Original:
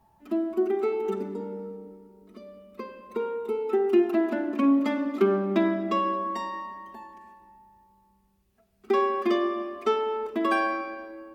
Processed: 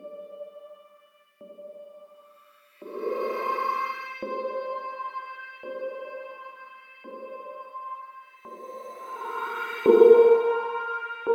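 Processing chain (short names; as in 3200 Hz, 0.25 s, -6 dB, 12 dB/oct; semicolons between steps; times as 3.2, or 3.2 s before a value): transient shaper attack +7 dB, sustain +3 dB; Paulstretch 17×, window 0.10 s, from 2.59; LFO high-pass saw up 0.71 Hz 320–2000 Hz; gain +2.5 dB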